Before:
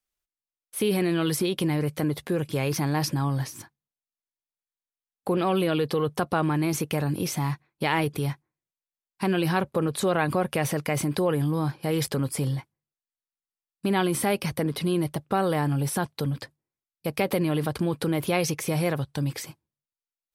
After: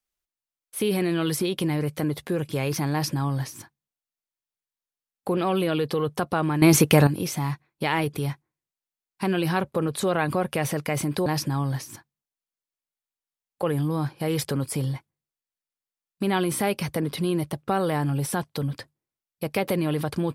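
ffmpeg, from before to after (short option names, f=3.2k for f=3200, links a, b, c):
-filter_complex "[0:a]asplit=5[a][b][c][d][e];[a]atrim=end=6.622[f];[b]atrim=start=6.618:end=7.072,asetpts=PTS-STARTPTS,volume=10.5dB[g];[c]atrim=start=7.068:end=11.262[h];[d]atrim=start=2.918:end=5.292[i];[e]atrim=start=11.258[j];[f][g]acrossfade=d=0.004:c1=hsin:c2=hsin[k];[k][h]acrossfade=d=0.004:c1=hsin:c2=hsin[l];[l][i]acrossfade=d=0.004:c1=hsin:c2=hsin[m];[m][j]acrossfade=d=0.004:c1=hsin:c2=hsin"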